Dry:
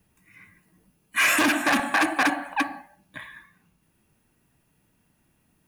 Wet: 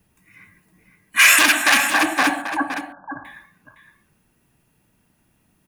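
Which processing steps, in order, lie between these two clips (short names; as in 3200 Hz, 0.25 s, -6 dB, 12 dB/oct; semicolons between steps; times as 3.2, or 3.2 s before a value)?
1.19–1.91 tilt shelf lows -8.5 dB, about 900 Hz; 2.41–3.25 brick-wall FIR low-pass 1700 Hz; echo 0.512 s -9.5 dB; gain +3 dB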